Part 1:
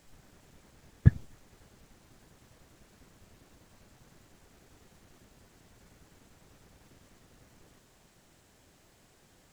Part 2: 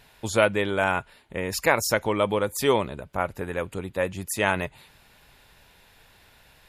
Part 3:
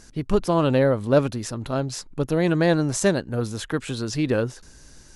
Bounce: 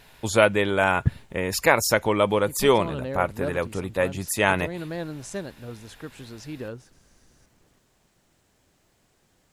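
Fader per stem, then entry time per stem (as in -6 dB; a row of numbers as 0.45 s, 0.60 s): -3.0 dB, +2.5 dB, -13.0 dB; 0.00 s, 0.00 s, 2.30 s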